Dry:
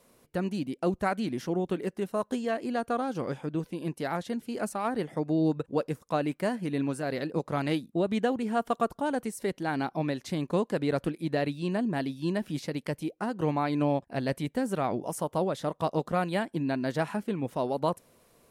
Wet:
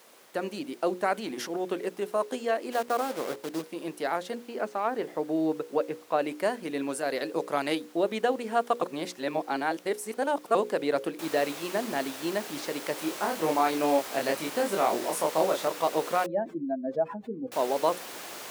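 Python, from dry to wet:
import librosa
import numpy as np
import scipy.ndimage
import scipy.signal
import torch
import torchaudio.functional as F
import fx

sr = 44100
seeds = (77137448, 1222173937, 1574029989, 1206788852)

y = fx.transient(x, sr, attack_db=-9, sustain_db=6, at=(1.05, 1.66), fade=0.02)
y = fx.delta_hold(y, sr, step_db=-35.5, at=(2.71, 3.61), fade=0.02)
y = fx.air_absorb(y, sr, metres=200.0, at=(4.35, 6.19))
y = fx.high_shelf(y, sr, hz=6200.0, db=7.5, at=(6.81, 7.75))
y = fx.noise_floor_step(y, sr, seeds[0], at_s=11.19, before_db=-57, after_db=-41, tilt_db=3.0)
y = fx.doubler(y, sr, ms=25.0, db=-3, at=(12.95, 15.68))
y = fx.spec_expand(y, sr, power=2.6, at=(16.26, 17.52))
y = fx.edit(y, sr, fx.reverse_span(start_s=8.82, length_s=1.73), tone=tone)
y = scipy.signal.sosfilt(scipy.signal.cheby1(2, 1.0, 420.0, 'highpass', fs=sr, output='sos'), y)
y = fx.hum_notches(y, sr, base_hz=60, count=9)
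y = y * 10.0 ** (3.5 / 20.0)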